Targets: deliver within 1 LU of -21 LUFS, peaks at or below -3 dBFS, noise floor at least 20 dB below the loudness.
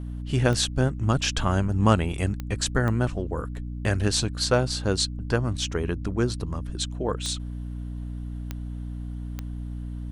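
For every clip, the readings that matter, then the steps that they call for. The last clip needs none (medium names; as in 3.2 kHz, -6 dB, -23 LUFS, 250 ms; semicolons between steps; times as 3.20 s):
clicks found 6; hum 60 Hz; highest harmonic 300 Hz; hum level -31 dBFS; loudness -27.0 LUFS; peak level -4.0 dBFS; loudness target -21.0 LUFS
-> de-click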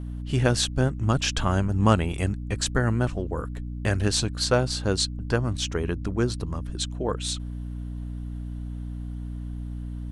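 clicks found 0; hum 60 Hz; highest harmonic 300 Hz; hum level -31 dBFS
-> hum notches 60/120/180/240/300 Hz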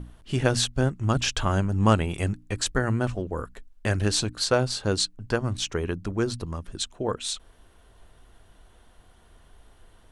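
hum not found; loudness -26.5 LUFS; peak level -4.5 dBFS; loudness target -21.0 LUFS
-> trim +5.5 dB; peak limiter -3 dBFS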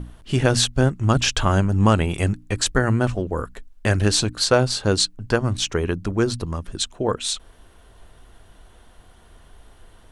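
loudness -21.5 LUFS; peak level -3.0 dBFS; noise floor -50 dBFS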